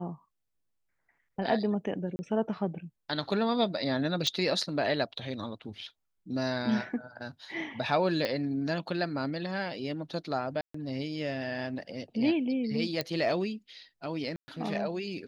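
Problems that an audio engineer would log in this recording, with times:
2.16–2.19 s: dropout 30 ms
4.27 s: pop -15 dBFS
8.25 s: pop -18 dBFS
10.61–10.74 s: dropout 134 ms
13.01 s: pop -16 dBFS
14.36–14.48 s: dropout 120 ms

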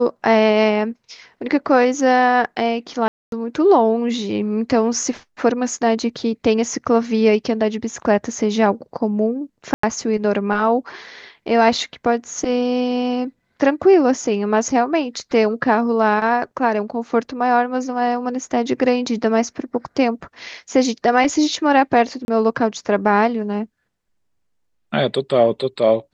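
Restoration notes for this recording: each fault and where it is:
3.08–3.32 s: dropout 242 ms
9.74–9.83 s: dropout 94 ms
22.25–22.28 s: dropout 31 ms

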